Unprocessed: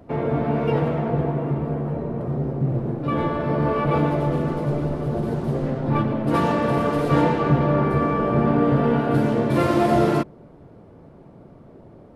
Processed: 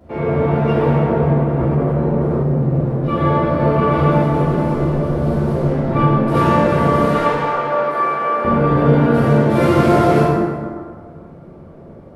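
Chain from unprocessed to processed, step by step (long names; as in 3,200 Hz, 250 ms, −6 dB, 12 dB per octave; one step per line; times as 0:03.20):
0:07.08–0:08.45: high-pass filter 660 Hz 12 dB per octave
dense smooth reverb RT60 1.9 s, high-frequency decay 0.5×, DRR −9 dB
0:01.59–0:02.43: envelope flattener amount 50%
level −3 dB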